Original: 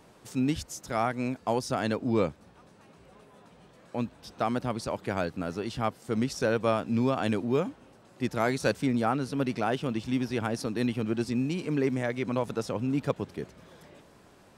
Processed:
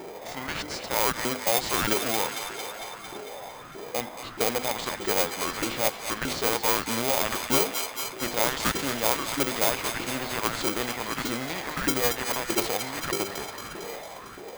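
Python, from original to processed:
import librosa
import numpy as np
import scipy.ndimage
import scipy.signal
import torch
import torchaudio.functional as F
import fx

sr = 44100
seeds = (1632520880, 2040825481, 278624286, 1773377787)

p1 = fx.peak_eq(x, sr, hz=310.0, db=-6.0, octaves=2.3)
p2 = fx.hum_notches(p1, sr, base_hz=50, count=10)
p3 = fx.filter_lfo_highpass(p2, sr, shape='saw_up', hz=1.6, low_hz=410.0, high_hz=1900.0, q=5.7)
p4 = fx.tilt_eq(p3, sr, slope=-3.0)
p5 = fx.sample_hold(p4, sr, seeds[0], rate_hz=1800.0, jitter_pct=0)
p6 = p4 + (p5 * 10.0 ** (-3.5 / 20.0))
p7 = fx.formant_shift(p6, sr, semitones=-4)
p8 = fx.hpss(p7, sr, part='percussive', gain_db=-6)
p9 = p8 + fx.echo_wet_highpass(p8, sr, ms=226, feedback_pct=67, hz=1700.0, wet_db=-10, dry=0)
p10 = fx.spectral_comp(p9, sr, ratio=2.0)
y = p10 * 10.0 ** (5.5 / 20.0)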